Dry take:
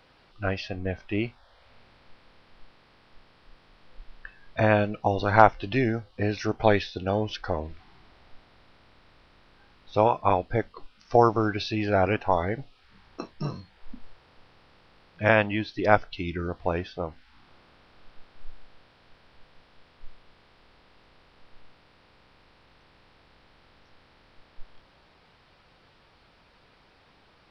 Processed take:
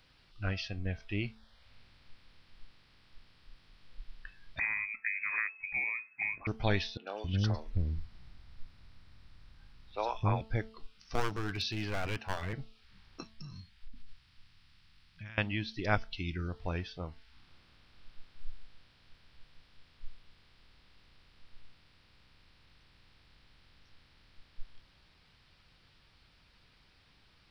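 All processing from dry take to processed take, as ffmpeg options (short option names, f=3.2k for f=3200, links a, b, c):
-filter_complex "[0:a]asettb=1/sr,asplit=3[a][b][c];[a]atrim=end=4.594[d];[b]atrim=start=4.59:end=6.47,asetpts=PTS-STARTPTS,afade=t=in:d=0.004:c=qsin,afade=t=out:st=1.876:d=0.004:c=qsin,acrossover=split=88|480[e][f][g];[e]acompressor=threshold=-47dB:ratio=4[h];[f]acompressor=threshold=-29dB:ratio=4[i];[g]acompressor=threshold=-32dB:ratio=4[j];[h][i][j]amix=inputs=3:normalize=0,lowpass=f=2.2k:t=q:w=0.5098,lowpass=f=2.2k:t=q:w=0.6013,lowpass=f=2.2k:t=q:w=0.9,lowpass=f=2.2k:t=q:w=2.563,afreqshift=-2600[k];[c]atrim=start=6.466[l];[d][k]acrossfade=d=0.004:c1=hsin:c2=qsin[m];[m][l]acrossfade=d=0.004:c1=qsin:c2=hsin,asettb=1/sr,asplit=3[n][o][p];[n]atrim=end=6.974[q];[o]atrim=start=6.97:end=10.41,asetpts=PTS-STARTPTS,afade=t=in:d=0.004:c=qsin,afade=t=out:st=3.436:d=0.004:c=qsin,lowshelf=f=200:g=7,acrossover=split=400|3000[r][s][t];[t]adelay=100[u];[r]adelay=270[v];[v][s][u]amix=inputs=3:normalize=0,atrim=end_sample=151704[w];[p]atrim=start=10.406[x];[q][w]acrossfade=d=0.004:c1=hsin:c2=qsin[y];[y][x]acrossfade=d=0.004:c1=qsin:c2=hsin,asettb=1/sr,asplit=3[z][aa][ab];[z]atrim=end=11.144[ac];[aa]atrim=start=11.14:end=12.53,asetpts=PTS-STARTPTS,afade=t=in:d=0.004:c=qsin,afade=t=out:st=1.386:d=0.004:c=qsin,highpass=f=73:w=0.5412,highpass=f=73:w=1.3066,aeval=exprs='clip(val(0),-1,0.0562)':c=same[ad];[ab]atrim=start=12.526[ae];[ac][ad]acrossfade=d=0.004:c1=hsin:c2=qsin[af];[af][ae]acrossfade=d=0.004:c1=qsin:c2=hsin,asettb=1/sr,asplit=3[ag][ah][ai];[ag]atrim=end=13.234[aj];[ah]atrim=start=13.23:end=15.38,asetpts=PTS-STARTPTS,afade=t=in:d=0.004:c=qsin,afade=t=out:st=2.146:d=0.004:c=qsin,equalizer=f=500:t=o:w=1.6:g=-14.5,acompressor=threshold=-37dB:ratio=12:attack=3.2:release=140:knee=1:detection=peak[ak];[ai]atrim=start=15.376[al];[aj][ak]acrossfade=d=0.004:c1=hsin:c2=qsin[am];[am][al]acrossfade=d=0.004:c1=qsin:c2=hsin,equalizer=f=610:t=o:w=3:g=-13.5,bandreject=f=221.3:t=h:w=4,bandreject=f=442.6:t=h:w=4,bandreject=f=663.9:t=h:w=4,bandreject=f=885.2:t=h:w=4,bandreject=f=1.1065k:t=h:w=4,bandreject=f=1.3278k:t=h:w=4"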